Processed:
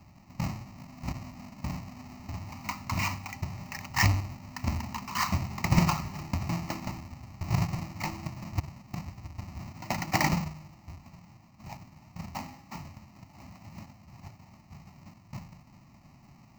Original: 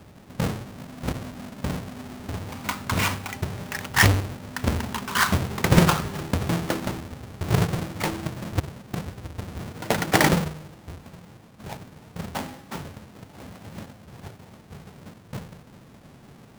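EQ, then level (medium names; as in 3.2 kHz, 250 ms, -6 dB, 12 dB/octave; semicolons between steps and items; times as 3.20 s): static phaser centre 2.3 kHz, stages 8; -4.5 dB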